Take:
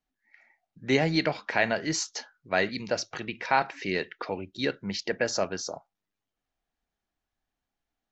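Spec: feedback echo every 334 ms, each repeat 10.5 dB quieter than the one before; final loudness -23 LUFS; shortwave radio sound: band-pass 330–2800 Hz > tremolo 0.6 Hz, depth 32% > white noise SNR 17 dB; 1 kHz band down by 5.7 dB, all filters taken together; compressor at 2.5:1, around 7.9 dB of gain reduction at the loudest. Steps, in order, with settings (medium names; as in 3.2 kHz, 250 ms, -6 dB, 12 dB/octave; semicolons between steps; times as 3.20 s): peaking EQ 1 kHz -8 dB; compression 2.5:1, threshold -32 dBFS; band-pass 330–2800 Hz; feedback delay 334 ms, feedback 30%, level -10.5 dB; tremolo 0.6 Hz, depth 32%; white noise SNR 17 dB; trim +16.5 dB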